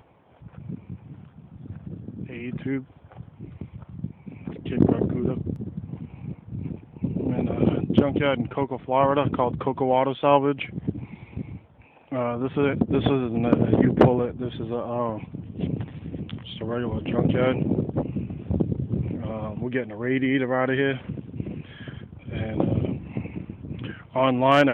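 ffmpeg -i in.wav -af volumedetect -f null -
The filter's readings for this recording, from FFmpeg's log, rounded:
mean_volume: -25.5 dB
max_volume: -4.6 dB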